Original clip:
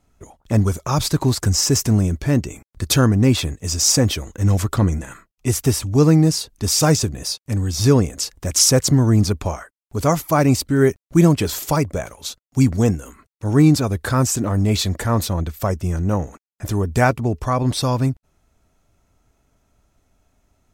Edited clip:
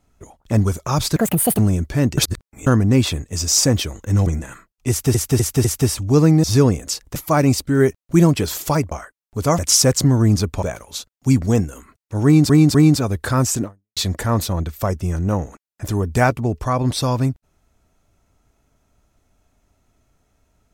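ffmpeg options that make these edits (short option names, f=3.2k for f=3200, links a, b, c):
-filter_complex "[0:a]asplit=17[a][b][c][d][e][f][g][h][i][j][k][l][m][n][o][p][q];[a]atrim=end=1.164[r];[b]atrim=start=1.16:end=1.9,asetpts=PTS-STARTPTS,asetrate=76734,aresample=44100,atrim=end_sample=18755,asetpts=PTS-STARTPTS[s];[c]atrim=start=1.896:end=2.492[t];[d]atrim=start=2.488:end=2.982,asetpts=PTS-STARTPTS,areverse[u];[e]atrim=start=2.978:end=4.582[v];[f]atrim=start=4.858:end=5.742[w];[g]atrim=start=5.488:end=5.742[x];[h]atrim=start=5.488:end=5.742[y];[i]atrim=start=5.488:end=6.282[z];[j]atrim=start=7.738:end=8.462[aa];[k]atrim=start=10.168:end=11.932[ab];[l]atrim=start=9.498:end=10.172[ac];[m]atrim=start=8.458:end=9.502[ad];[n]atrim=start=11.928:end=13.802[ae];[o]atrim=start=13.548:end=13.802[af];[p]atrim=start=13.548:end=14.77,asetpts=PTS-STARTPTS,afade=t=out:st=0.892:d=0.33:c=exp[ag];[q]atrim=start=14.77,asetpts=PTS-STARTPTS,afade=t=in:d=0.004:c=hsin[ah];[r][s]acrossfade=d=0.004:c1=hsin:c2=hsin[ai];[ai][t]acrossfade=d=0.004:c1=hsin:c2=hsin[aj];[aj][u]acrossfade=d=0.004:c1=hsin:c2=hsin[ak];[ak][v]acrossfade=d=0.004:c1=hsin:c2=hsin[al];[al][w]acrossfade=d=0.004:c1=hsin:c2=hsin[am];[am][x]acrossfade=d=0.004:c1=hsin:c2=hsin[an];[an][y]acrossfade=d=0.004:c1=hsin:c2=hsin[ao];[ao][z]acrossfade=d=0.004:c1=hsin:c2=hsin[ap];[ap][aa]acrossfade=d=0.004:c1=hsin:c2=hsin[aq];[aq][ab]acrossfade=d=0.004:c1=hsin:c2=hsin[ar];[ar][ac]acrossfade=d=0.004:c1=hsin:c2=hsin[as];[as][ad]acrossfade=d=0.004:c1=hsin:c2=hsin[at];[at][ae]acrossfade=d=0.004:c1=hsin:c2=hsin[au];[au][af]acrossfade=d=0.004:c1=hsin:c2=hsin[av];[ag][ah]concat=n=2:v=0:a=1[aw];[av][aw]acrossfade=d=0.004:c1=hsin:c2=hsin"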